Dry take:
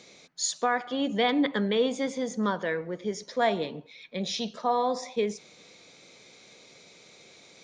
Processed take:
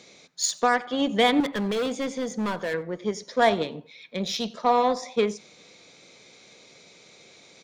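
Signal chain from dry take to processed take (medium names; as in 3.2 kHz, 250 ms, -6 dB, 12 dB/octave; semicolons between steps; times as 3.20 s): Chebyshev shaper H 7 -26 dB, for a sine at -13 dBFS; 1.40–2.74 s: hard clipper -28.5 dBFS, distortion -10 dB; delay 91 ms -24 dB; trim +5 dB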